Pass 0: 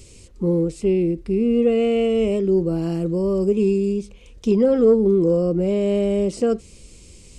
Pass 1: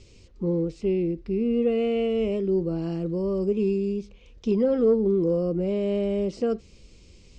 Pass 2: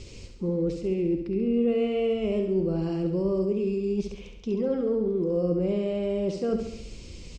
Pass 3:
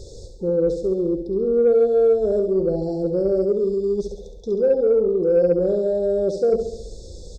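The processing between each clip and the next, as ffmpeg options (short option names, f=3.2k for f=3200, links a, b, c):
-af "lowpass=f=5.8k:w=0.5412,lowpass=f=5.8k:w=1.3066,volume=-5.5dB"
-af "areverse,acompressor=threshold=-32dB:ratio=12,areverse,aecho=1:1:68|136|204|272|340|408|476:0.447|0.25|0.14|0.0784|0.0439|0.0246|0.0138,volume=8dB"
-af "afftfilt=real='re*(1-between(b*sr/4096,920,3400))':imag='im*(1-between(b*sr/4096,920,3400))':win_size=4096:overlap=0.75,equalizer=f=125:t=o:w=1:g=-3,equalizer=f=250:t=o:w=1:g=-10,equalizer=f=500:t=o:w=1:g=10,equalizer=f=1k:t=o:w=1:g=-8,equalizer=f=2k:t=o:w=1:g=7,equalizer=f=4k:t=o:w=1:g=-5,aeval=exprs='0.251*(cos(1*acos(clip(val(0)/0.251,-1,1)))-cos(1*PI/2))+0.00562*(cos(5*acos(clip(val(0)/0.251,-1,1)))-cos(5*PI/2))':c=same,volume=4.5dB"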